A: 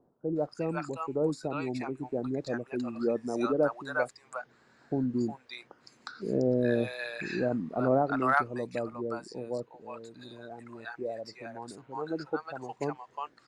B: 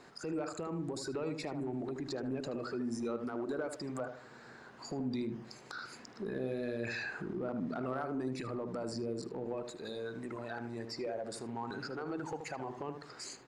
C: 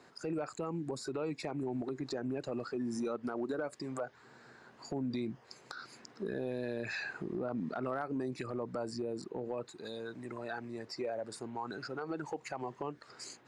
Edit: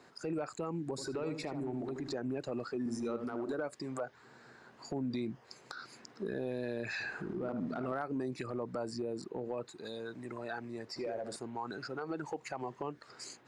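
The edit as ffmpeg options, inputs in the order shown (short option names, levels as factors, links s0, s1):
-filter_complex "[1:a]asplit=4[s0][s1][s2][s3];[2:a]asplit=5[s4][s5][s6][s7][s8];[s4]atrim=end=0.982[s9];[s0]atrim=start=0.978:end=2.132[s10];[s5]atrim=start=2.128:end=2.862[s11];[s1]atrim=start=2.858:end=3.532[s12];[s6]atrim=start=3.528:end=7.002[s13];[s2]atrim=start=6.998:end=7.922[s14];[s7]atrim=start=7.918:end=10.962[s15];[s3]atrim=start=10.958:end=11.362[s16];[s8]atrim=start=11.358[s17];[s9][s10]acrossfade=d=0.004:c1=hsin:c2=hsin[s18];[s18][s11]acrossfade=d=0.004:c1=hsin:c2=hsin[s19];[s19][s12]acrossfade=d=0.004:c1=hsin:c2=hsin[s20];[s20][s13]acrossfade=d=0.004:c1=hsin:c2=hsin[s21];[s21][s14]acrossfade=d=0.004:c1=hsin:c2=hsin[s22];[s22][s15]acrossfade=d=0.004:c1=hsin:c2=hsin[s23];[s23][s16]acrossfade=d=0.004:c1=hsin:c2=hsin[s24];[s24][s17]acrossfade=d=0.004:c1=hsin:c2=hsin"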